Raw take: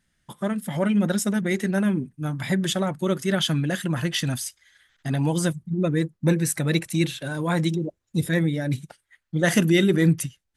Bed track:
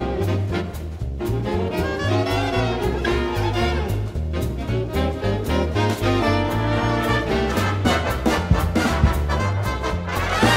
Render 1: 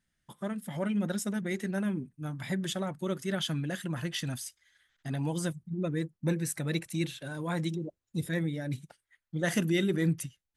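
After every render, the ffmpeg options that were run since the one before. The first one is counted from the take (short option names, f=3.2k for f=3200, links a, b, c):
-af "volume=-9dB"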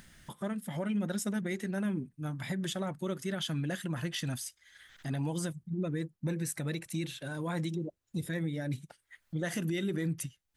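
-af "acompressor=mode=upward:threshold=-38dB:ratio=2.5,alimiter=level_in=1dB:limit=-24dB:level=0:latency=1:release=96,volume=-1dB"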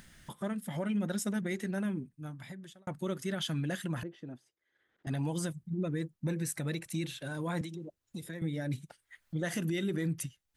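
-filter_complex "[0:a]asettb=1/sr,asplit=3[a][b][c];[a]atrim=end=4.034[d];[b]atrim=start=4.03:end=5.07,asetpts=PTS-STARTPTS,afade=t=in:d=0.004:c=qsin,afade=t=out:st=1.036:d=0.004:c=qsin,bandpass=f=380:t=q:w=1.9[e];[c]atrim=start=5.066[f];[d][e]acrossfade=d=0.004:c1=hsin:c2=qsin[g];[g][f]acrossfade=d=0.004:c1=qsin:c2=hsin,asettb=1/sr,asplit=3[h][i][j];[h]atrim=end=7.614[k];[i]atrim=start=7.61:end=8.42,asetpts=PTS-STARTPTS,afade=t=in:d=0.004:c=qsin,afade=t=out:st=0.806:d=0.004:c=qsin,acrossover=split=210|800[l][m][n];[l]acompressor=threshold=-48dB:ratio=4[o];[m]acompressor=threshold=-44dB:ratio=4[p];[n]acompressor=threshold=-48dB:ratio=4[q];[o][p][q]amix=inputs=3:normalize=0[r];[j]atrim=start=8.416[s];[k][r]acrossfade=d=0.004:c1=hsin:c2=qsin[t];[t][s]acrossfade=d=0.004:c1=qsin:c2=hsin,asplit=2[u][v];[u]atrim=end=2.87,asetpts=PTS-STARTPTS,afade=t=out:st=1.72:d=1.15[w];[v]atrim=start=2.87,asetpts=PTS-STARTPTS,afade=t=in:d=0.004:c=hsin[x];[w][x]concat=n=2:v=0:a=1"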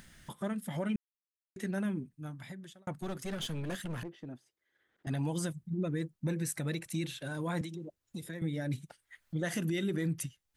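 -filter_complex "[0:a]asettb=1/sr,asplit=3[a][b][c];[a]atrim=end=2.954[d];[b]atrim=start=2.95:end=4.27,asetpts=PTS-STARTPTS,afade=t=in:d=0.004:c=qsin,afade=t=out:st=1.316:d=0.004:c=qsin,aeval=exprs='clip(val(0),-1,0.0106)':c=same[e];[c]atrim=start=4.266[f];[d][e]acrossfade=d=0.004:c1=hsin:c2=qsin[g];[g][f]acrossfade=d=0.004:c1=qsin:c2=hsin,asplit=3[h][i][j];[h]atrim=end=0.96,asetpts=PTS-STARTPTS,afade=t=out:st=0.956:d=0.004:c=hsin[k];[i]atrim=start=0.96:end=1.56,asetpts=PTS-STARTPTS,volume=0[l];[j]atrim=start=1.56,asetpts=PTS-STARTPTS,afade=t=in:d=0.004:c=hsin[m];[k][l][m]concat=n=3:v=0:a=1"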